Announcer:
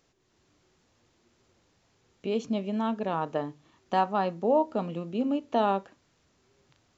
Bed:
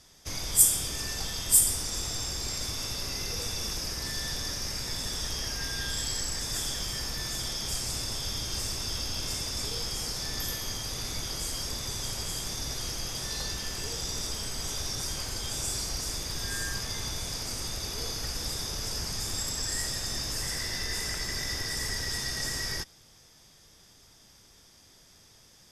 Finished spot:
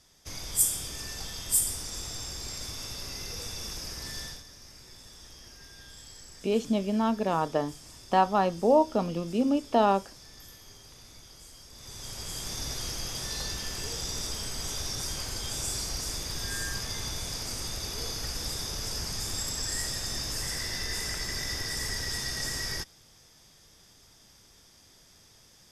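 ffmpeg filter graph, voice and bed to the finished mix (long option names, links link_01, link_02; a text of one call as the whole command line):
ffmpeg -i stem1.wav -i stem2.wav -filter_complex "[0:a]adelay=4200,volume=2.5dB[link_01];[1:a]volume=11.5dB,afade=type=out:start_time=4.21:duration=0.23:silence=0.251189,afade=type=in:start_time=11.71:duration=0.89:silence=0.158489[link_02];[link_01][link_02]amix=inputs=2:normalize=0" out.wav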